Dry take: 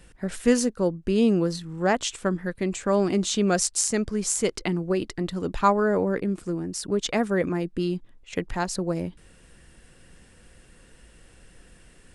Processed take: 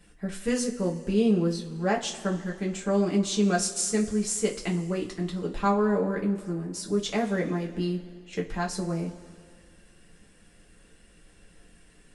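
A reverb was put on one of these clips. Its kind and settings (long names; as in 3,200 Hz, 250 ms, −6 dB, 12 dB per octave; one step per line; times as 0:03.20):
coupled-rooms reverb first 0.21 s, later 2.1 s, from −20 dB, DRR −2.5 dB
level −8 dB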